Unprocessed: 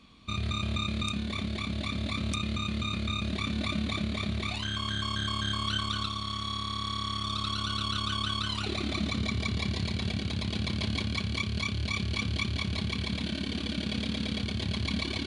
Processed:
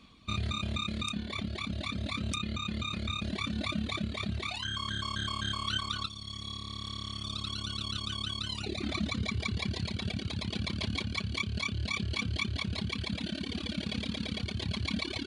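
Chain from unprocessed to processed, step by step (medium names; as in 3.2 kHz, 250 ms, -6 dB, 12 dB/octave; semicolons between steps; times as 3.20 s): 6.07–8.82 s: peaking EQ 1.3 kHz -8 dB 1.5 oct; reverb removal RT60 1.7 s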